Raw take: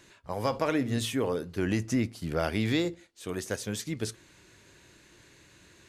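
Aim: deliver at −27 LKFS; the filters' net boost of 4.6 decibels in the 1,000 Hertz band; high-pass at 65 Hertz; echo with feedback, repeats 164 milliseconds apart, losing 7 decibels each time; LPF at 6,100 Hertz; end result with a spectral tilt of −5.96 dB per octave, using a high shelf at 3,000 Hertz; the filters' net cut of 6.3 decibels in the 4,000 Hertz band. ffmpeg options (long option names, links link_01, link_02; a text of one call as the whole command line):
ffmpeg -i in.wav -af "highpass=65,lowpass=6100,equalizer=frequency=1000:width_type=o:gain=6.5,highshelf=frequency=3000:gain=-3.5,equalizer=frequency=4000:width_type=o:gain=-5,aecho=1:1:164|328|492|656|820:0.447|0.201|0.0905|0.0407|0.0183,volume=2.5dB" out.wav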